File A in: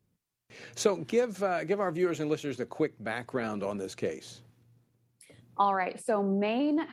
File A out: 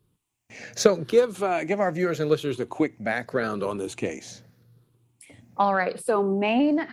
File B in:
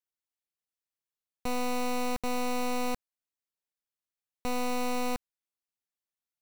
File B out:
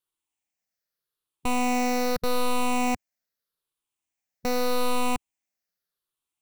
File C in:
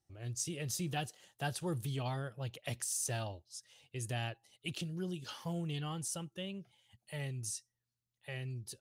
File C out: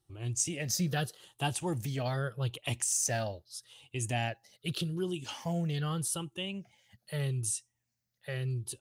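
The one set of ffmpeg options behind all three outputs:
ffmpeg -i in.wav -af "afftfilt=real='re*pow(10,9/40*sin(2*PI*(0.63*log(max(b,1)*sr/1024/100)/log(2)-(-0.82)*(pts-256)/sr)))':imag='im*pow(10,9/40*sin(2*PI*(0.63*log(max(b,1)*sr/1024/100)/log(2)-(-0.82)*(pts-256)/sr)))':win_size=1024:overlap=0.75,aeval=exprs='0.335*(cos(1*acos(clip(val(0)/0.335,-1,1)))-cos(1*PI/2))+0.0299*(cos(3*acos(clip(val(0)/0.335,-1,1)))-cos(3*PI/2))':channel_layout=same,volume=7.5dB" out.wav

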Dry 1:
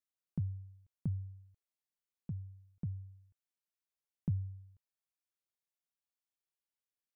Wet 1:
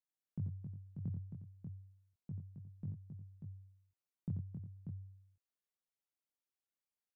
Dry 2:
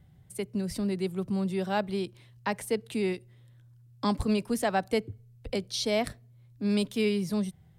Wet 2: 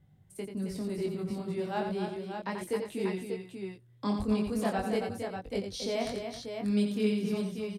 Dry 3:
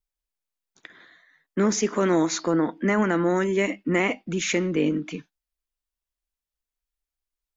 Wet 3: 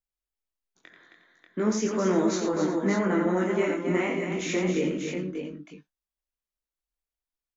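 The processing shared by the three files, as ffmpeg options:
ffmpeg -i in.wav -filter_complex "[0:a]equalizer=frequency=340:width=0.31:gain=4,flanger=delay=20:depth=3.7:speed=0.37,asplit=2[link_01][link_02];[link_02]aecho=0:1:87|268|359|589:0.473|0.447|0.168|0.473[link_03];[link_01][link_03]amix=inputs=2:normalize=0,volume=-5dB" out.wav

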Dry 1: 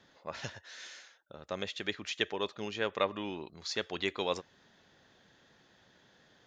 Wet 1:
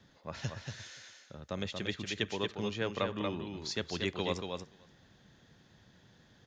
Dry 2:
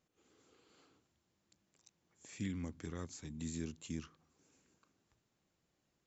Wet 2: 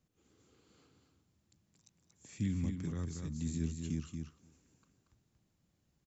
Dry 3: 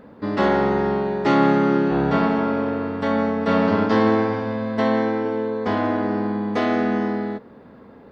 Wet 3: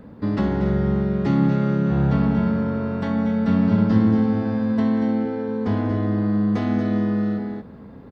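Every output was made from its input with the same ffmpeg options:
ffmpeg -i in.wav -filter_complex "[0:a]bass=frequency=250:gain=12,treble=frequency=4000:gain=3,asplit=2[link_01][link_02];[link_02]aecho=0:1:233:0.531[link_03];[link_01][link_03]amix=inputs=2:normalize=0,acrossover=split=260[link_04][link_05];[link_05]acompressor=threshold=-24dB:ratio=6[link_06];[link_04][link_06]amix=inputs=2:normalize=0,asplit=2[link_07][link_08];[link_08]aecho=0:1:294:0.0631[link_09];[link_07][link_09]amix=inputs=2:normalize=0,volume=-3dB" out.wav

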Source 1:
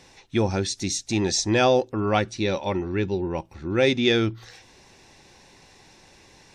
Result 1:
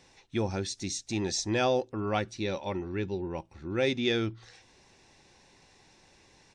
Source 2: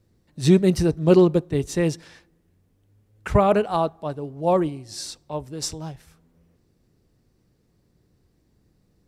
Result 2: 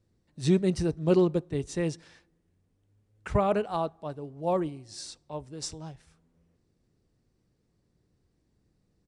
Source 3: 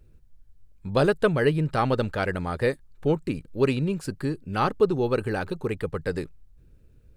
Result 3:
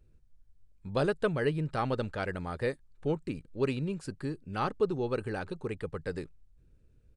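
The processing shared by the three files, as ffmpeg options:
ffmpeg -i in.wav -af "aresample=22050,aresample=44100,volume=-7.5dB" out.wav

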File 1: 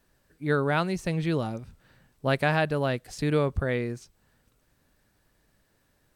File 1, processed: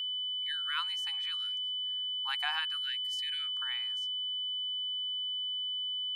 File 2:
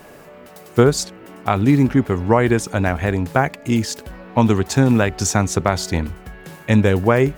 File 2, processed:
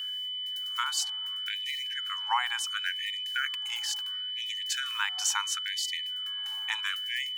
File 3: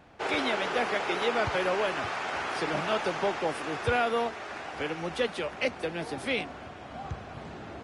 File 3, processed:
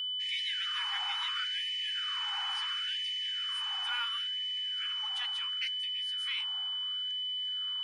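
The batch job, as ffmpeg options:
ffmpeg -i in.wav -af "aeval=exprs='val(0)+0.0501*sin(2*PI*3000*n/s)':channel_layout=same,afftfilt=real='re*gte(b*sr/1024,730*pow(1800/730,0.5+0.5*sin(2*PI*0.72*pts/sr)))':imag='im*gte(b*sr/1024,730*pow(1800/730,0.5+0.5*sin(2*PI*0.72*pts/sr)))':win_size=1024:overlap=0.75,volume=-6.5dB" out.wav

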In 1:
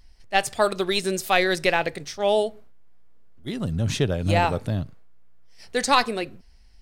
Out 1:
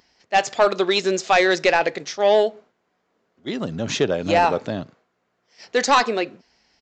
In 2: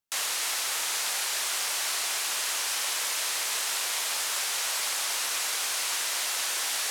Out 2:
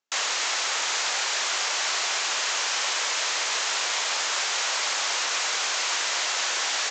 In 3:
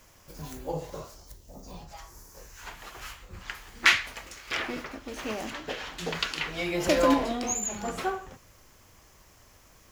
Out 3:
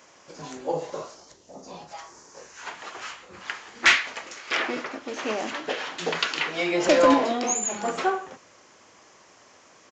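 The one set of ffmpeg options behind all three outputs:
ffmpeg -i in.wav -af "highpass=280,aresample=16000,asoftclip=type=tanh:threshold=-14dB,aresample=44100,equalizer=frequency=4900:width=0.54:gain=-3,volume=7dB" out.wav

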